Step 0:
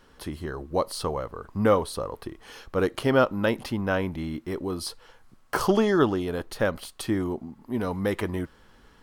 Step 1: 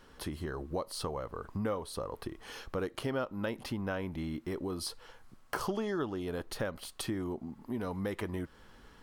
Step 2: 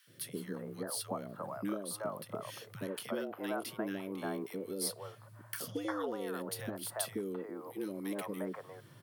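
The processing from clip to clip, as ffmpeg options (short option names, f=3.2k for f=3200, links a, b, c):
-af "acompressor=threshold=-34dB:ratio=3,volume=-1dB"
-filter_complex "[0:a]acrossover=split=440|1600[a][b][c];[a]adelay=70[d];[b]adelay=350[e];[d][e][c]amix=inputs=3:normalize=0,afreqshift=100,aexciter=amount=3.5:drive=3.4:freq=8.9k,volume=-1.5dB"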